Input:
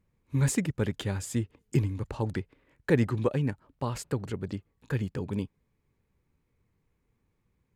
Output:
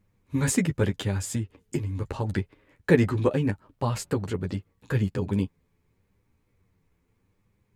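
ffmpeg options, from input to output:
ffmpeg -i in.wav -filter_complex "[0:a]asplit=3[link_01][link_02][link_03];[link_01]afade=type=out:start_time=0.89:duration=0.02[link_04];[link_02]acompressor=threshold=-29dB:ratio=10,afade=type=in:start_time=0.89:duration=0.02,afade=type=out:start_time=2.28:duration=0.02[link_05];[link_03]afade=type=in:start_time=2.28:duration=0.02[link_06];[link_04][link_05][link_06]amix=inputs=3:normalize=0,flanger=delay=9.6:depth=2.1:regen=-13:speed=0.79:shape=sinusoidal,volume=8dB" out.wav

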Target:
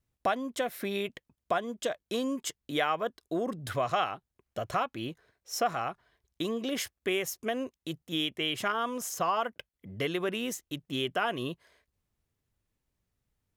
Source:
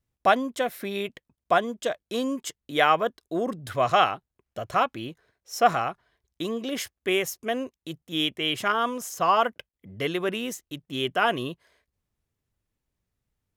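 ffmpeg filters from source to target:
ffmpeg -i in.wav -af "acompressor=threshold=-29dB:ratio=2.5" out.wav

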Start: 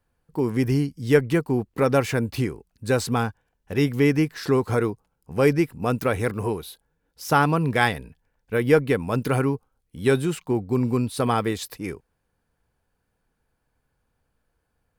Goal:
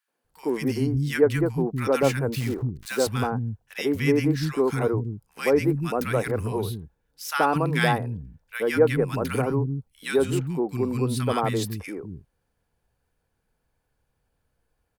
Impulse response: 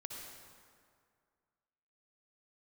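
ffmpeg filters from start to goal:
-filter_complex "[0:a]asettb=1/sr,asplit=3[link_01][link_02][link_03];[link_01]atrim=end=2.314[link_04];[link_02]atrim=start=2.31:end=3.07,asetpts=PTS-STARTPTS,afade=type=in:duration=0.004:curve=qsin,afade=type=out:start_time=0.756:duration=0.004:curve=qsin,acrusher=bits=7:dc=4:mix=0:aa=0.000001[link_05];[link_03]atrim=start=3.066[link_06];[link_04][link_05]acrossfade=duration=0.004:curve1=hsin:curve2=qsin[link_07];[link_07][link_06]acrossfade=duration=0.004:curve1=qsin:curve2=hsin,acrossover=split=230|1300[link_08][link_09][link_10];[link_09]adelay=80[link_11];[link_08]adelay=240[link_12];[link_12][link_11][link_10]amix=inputs=3:normalize=0"

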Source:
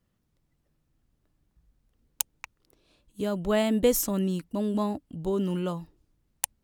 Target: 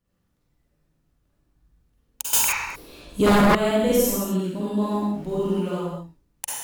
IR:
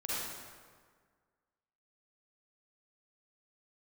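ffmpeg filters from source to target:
-filter_complex "[0:a]asettb=1/sr,asplit=3[link_01][link_02][link_03];[link_01]atrim=end=4.844[link_04];[link_02]atrim=start=4.84:end=5.7,asetpts=PTS-STARTPTS,afade=type=in:duration=0.004:curve=qsin,afade=type=out:start_time=0.856:duration=0.004:curve=qsin,aeval=exprs='val(0)*gte(abs(val(0)),0.00473)':channel_layout=same[link_05];[link_03]atrim=start=5.696[link_06];[link_04][link_05]acrossfade=duration=0.004:curve1=hsin:curve2=qsin[link_07];[link_07][link_06]acrossfade=duration=0.004:curve1=qsin:curve2=hsin[link_08];[1:a]atrim=start_sample=2205,afade=type=out:start_time=0.36:duration=0.01,atrim=end_sample=16317[link_09];[link_08][link_09]afir=irnorm=-1:irlink=0,asettb=1/sr,asplit=3[link_10][link_11][link_12];[link_10]atrim=end=2.334[link_13];[link_11]atrim=start=2.33:end=3.55,asetpts=PTS-STARTPTS,afade=type=in:duration=0.004:curve=qsin,afade=type=out:start_time=1.216:duration=0.004:curve=qsin,aeval=exprs='0.251*sin(PI/2*4.47*val(0)/0.251)':channel_layout=same[link_14];[link_12]atrim=start=3.546[link_15];[link_13][link_14]acrossfade=duration=0.004:curve1=hsin:curve2=qsin[link_16];[link_16][link_15]acrossfade=duration=0.004:curve1=qsin:curve2=hsin"

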